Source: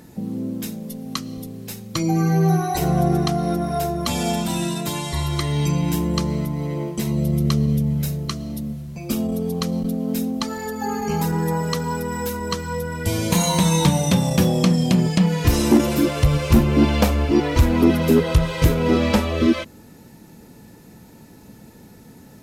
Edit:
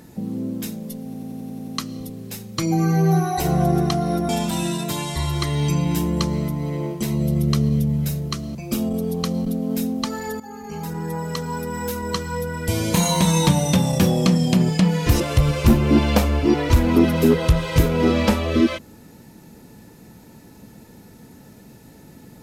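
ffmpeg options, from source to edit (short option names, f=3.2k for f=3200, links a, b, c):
-filter_complex "[0:a]asplit=12[a][b][c][d][e][f][g][h][i][j][k][l];[a]atrim=end=1.142[m];[b]atrim=start=1.048:end=1.142[n];[c]atrim=start=1.048:end=1.142[o];[d]atrim=start=1.048:end=1.142[p];[e]atrim=start=1.048:end=1.142[q];[f]atrim=start=1.048:end=1.142[r];[g]atrim=start=1.048:end=1.142[s];[h]atrim=start=1.048:end=3.662[t];[i]atrim=start=4.258:end=8.522[u];[j]atrim=start=8.928:end=10.78,asetpts=PTS-STARTPTS,afade=t=out:st=1.848:d=0.004:c=hsin:silence=0.188365[v];[k]atrim=start=10.78:end=15.582,asetpts=PTS-STARTPTS,afade=t=in:d=1.66:silence=0.188365[w];[l]atrim=start=16.058[x];[m][n]acrossfade=d=0.004:c1=hsin:c2=hsin[y];[y][o]acrossfade=d=0.004:c1=hsin:c2=hsin[z];[z][p]acrossfade=d=0.004:c1=hsin:c2=hsin[aa];[aa][q]acrossfade=d=0.004:c1=hsin:c2=hsin[ab];[ab][r]acrossfade=d=0.004:c1=hsin:c2=hsin[ac];[ac][s]acrossfade=d=0.004:c1=hsin:c2=hsin[ad];[ad][t]acrossfade=d=0.004:c1=hsin:c2=hsin[ae];[ae][u]acrossfade=d=0.004:c1=hsin:c2=hsin[af];[v][w]concat=n=2:v=0:a=1[ag];[af][ag]acrossfade=d=0.004:c1=hsin:c2=hsin[ah];[ah][x]acrossfade=d=0.004:c1=hsin:c2=hsin"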